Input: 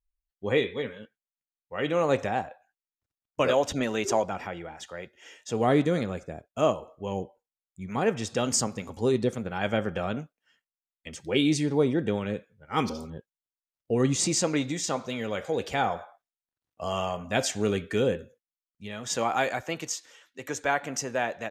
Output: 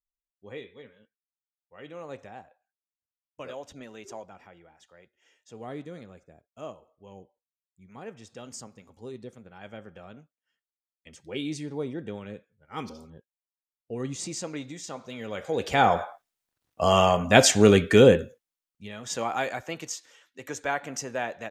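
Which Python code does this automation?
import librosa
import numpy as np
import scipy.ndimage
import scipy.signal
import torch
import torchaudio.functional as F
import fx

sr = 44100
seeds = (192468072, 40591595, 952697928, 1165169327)

y = fx.gain(x, sr, db=fx.line((10.16, -16.0), (11.14, -9.0), (14.94, -9.0), (15.43, -2.0), (16.01, 10.0), (18.18, 10.0), (18.93, -2.5)))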